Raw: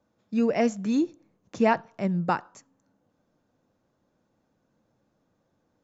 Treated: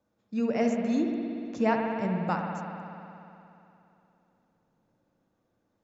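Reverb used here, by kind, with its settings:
spring reverb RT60 2.9 s, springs 59 ms, chirp 20 ms, DRR 1.5 dB
level −5 dB

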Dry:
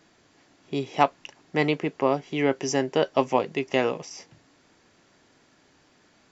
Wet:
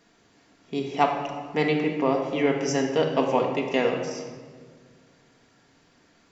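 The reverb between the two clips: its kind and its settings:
rectangular room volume 1,800 cubic metres, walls mixed, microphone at 1.7 metres
level −2.5 dB

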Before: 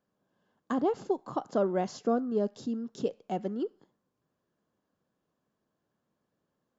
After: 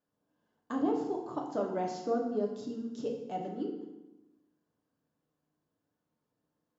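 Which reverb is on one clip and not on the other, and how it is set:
feedback delay network reverb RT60 1 s, low-frequency decay 1.3×, high-frequency decay 0.8×, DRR −0.5 dB
level −7 dB

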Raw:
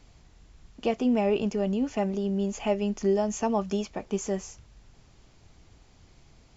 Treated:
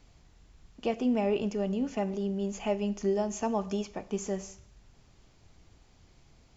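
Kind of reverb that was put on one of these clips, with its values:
four-comb reverb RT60 0.62 s, combs from 32 ms, DRR 15.5 dB
level −3.5 dB

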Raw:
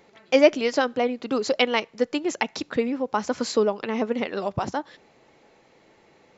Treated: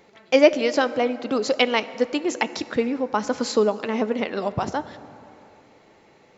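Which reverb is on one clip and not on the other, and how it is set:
dense smooth reverb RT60 3 s, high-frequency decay 0.5×, DRR 14 dB
level +1.5 dB

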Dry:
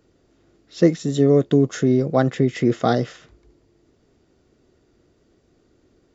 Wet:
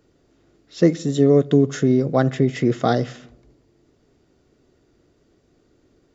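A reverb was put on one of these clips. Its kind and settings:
rectangular room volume 3,100 cubic metres, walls furnished, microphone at 0.32 metres

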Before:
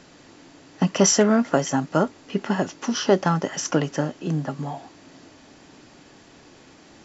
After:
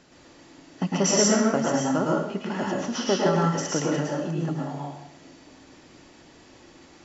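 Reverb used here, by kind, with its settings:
dense smooth reverb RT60 0.69 s, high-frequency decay 0.95×, pre-delay 95 ms, DRR −3.5 dB
level −6.5 dB

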